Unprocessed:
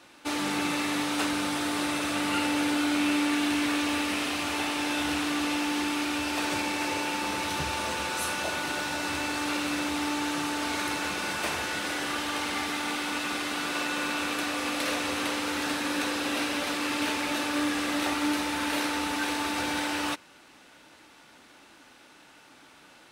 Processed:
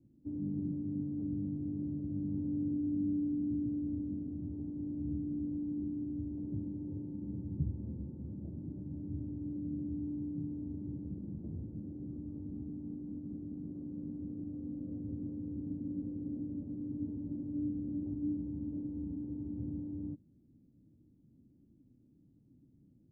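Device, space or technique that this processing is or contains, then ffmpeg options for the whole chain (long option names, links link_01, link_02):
the neighbour's flat through the wall: -af "lowpass=frequency=240:width=0.5412,lowpass=frequency=240:width=1.3066,equalizer=frequency=110:width_type=o:width=0.74:gain=7,volume=1dB"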